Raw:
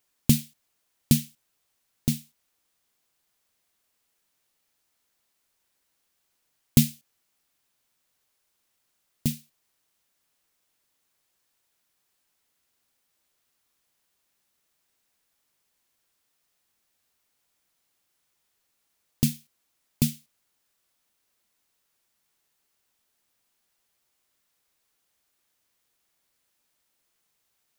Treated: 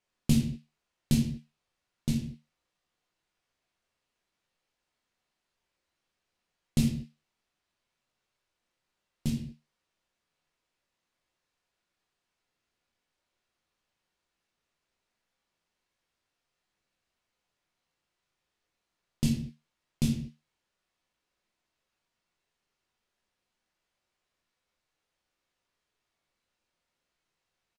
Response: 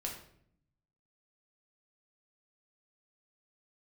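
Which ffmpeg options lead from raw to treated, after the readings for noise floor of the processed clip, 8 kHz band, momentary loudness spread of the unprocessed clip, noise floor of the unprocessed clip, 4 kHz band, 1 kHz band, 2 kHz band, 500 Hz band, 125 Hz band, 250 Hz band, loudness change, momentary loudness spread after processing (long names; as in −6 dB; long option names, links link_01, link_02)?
−85 dBFS, −9.0 dB, 11 LU, −75 dBFS, −5.5 dB, can't be measured, −3.5 dB, −3.0 dB, −3.0 dB, −2.0 dB, −4.5 dB, 16 LU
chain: -filter_complex "[0:a]alimiter=limit=-5dB:level=0:latency=1:release=295,asplit=2[link_01][link_02];[link_02]adelay=21,volume=-13.5dB[link_03];[link_01][link_03]amix=inputs=2:normalize=0[link_04];[1:a]atrim=start_sample=2205,afade=type=out:start_time=0.31:duration=0.01,atrim=end_sample=14112[link_05];[link_04][link_05]afir=irnorm=-1:irlink=0,adynamicsmooth=sensitivity=6.5:basefreq=5800,aresample=32000,aresample=44100,volume=-3dB"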